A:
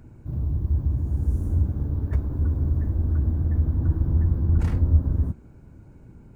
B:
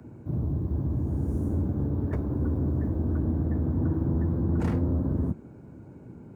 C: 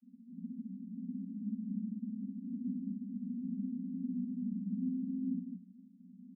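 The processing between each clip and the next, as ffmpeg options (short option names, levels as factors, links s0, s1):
-filter_complex "[0:a]highpass=86,equalizer=f=380:w=0.31:g=9.5,acrossover=split=160|290|870[s0][s1][s2][s3];[s0]alimiter=limit=0.0944:level=0:latency=1[s4];[s4][s1][s2][s3]amix=inputs=4:normalize=0,volume=0.708"
-af "asuperpass=centerf=220:order=20:qfactor=2.5,aecho=1:1:61.22|209.9:0.891|0.631,volume=0.422"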